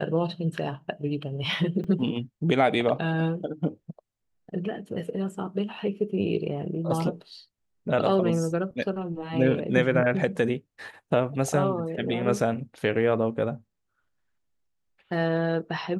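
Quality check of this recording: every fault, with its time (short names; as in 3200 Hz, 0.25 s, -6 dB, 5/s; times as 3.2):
1.84 gap 4.5 ms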